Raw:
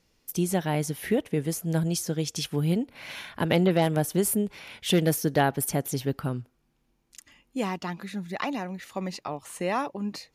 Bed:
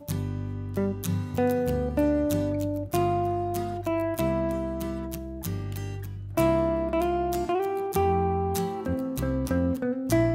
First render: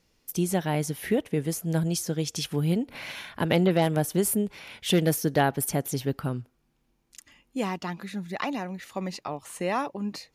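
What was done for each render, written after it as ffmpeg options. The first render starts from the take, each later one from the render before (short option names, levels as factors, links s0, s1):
-filter_complex "[0:a]asettb=1/sr,asplit=3[s0][s1][s2];[s0]atrim=end=2.224[s3];[s1]atrim=start=2.22:end=3.12,asetpts=PTS-STARTPTS,afade=t=in:d=0.004:c=qsin,afade=t=out:st=0.896:d=0.004:c=qsin,acompressor=mode=upward:threshold=0.0282:ratio=2.5:attack=3.2:release=140:knee=2.83:detection=peak[s4];[s2]atrim=start=3.116[s5];[s3][s4]acrossfade=d=0.004:c1=hsin:c2=qsin[s6];[s6][s5]acrossfade=d=0.004:c1=qsin:c2=hsin"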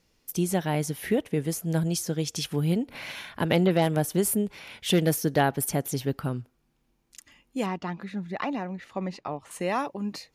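-filter_complex "[0:a]asettb=1/sr,asplit=3[s0][s1][s2];[s0]atrim=end=7.664[s3];[s1]atrim=start=7.66:end=9.51,asetpts=PTS-STARTPTS,afade=t=in:d=0.004:c=qsin,afade=t=out:st=1.846:d=0.004:c=qsin,aemphasis=mode=reproduction:type=75fm[s4];[s2]atrim=start=9.506[s5];[s3][s4]acrossfade=d=0.004:c1=hsin:c2=qsin[s6];[s6][s5]acrossfade=d=0.004:c1=qsin:c2=hsin"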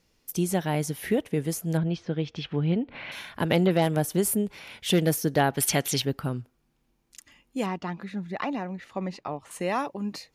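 -filter_complex "[0:a]asettb=1/sr,asplit=3[s0][s1][s2];[s0]atrim=end=1.774[s3];[s1]atrim=start=1.77:end=3.12,asetpts=PTS-STARTPTS,afade=t=in:d=0.004:c=qsin,afade=t=out:st=1.346:d=0.004:c=qsin,lowpass=f=3400:w=0.5412,lowpass=f=3400:w=1.3066[s4];[s2]atrim=start=3.116[s5];[s3][s4]acrossfade=d=0.004:c1=hsin:c2=qsin[s6];[s6][s5]acrossfade=d=0.004:c1=qsin:c2=hsin,asettb=1/sr,asplit=3[s7][s8][s9];[s7]atrim=end=5.574[s10];[s8]atrim=start=5.57:end=6.02,asetpts=PTS-STARTPTS,afade=t=in:d=0.004:c=qsin,afade=t=out:st=0.446:d=0.004:c=qsin,equalizer=f=3100:w=0.52:g=14.5[s11];[s9]atrim=start=6.016[s12];[s10][s11]acrossfade=d=0.004:c1=hsin:c2=qsin[s13];[s13][s12]acrossfade=d=0.004:c1=qsin:c2=hsin"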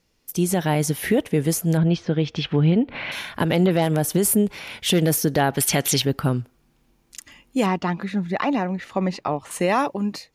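-af "dynaudnorm=f=170:g=5:m=2.82,alimiter=limit=0.316:level=0:latency=1:release=51"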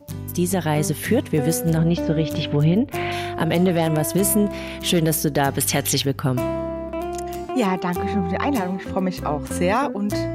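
-filter_complex "[1:a]volume=0.794[s0];[0:a][s0]amix=inputs=2:normalize=0"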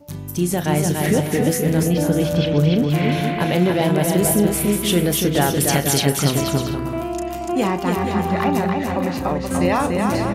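-filter_complex "[0:a]asplit=2[s0][s1];[s1]adelay=34,volume=0.282[s2];[s0][s2]amix=inputs=2:normalize=0,aecho=1:1:290|478.5|601|680.7|732.4:0.631|0.398|0.251|0.158|0.1"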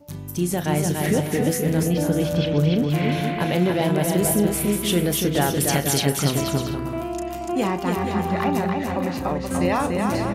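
-af "volume=0.708"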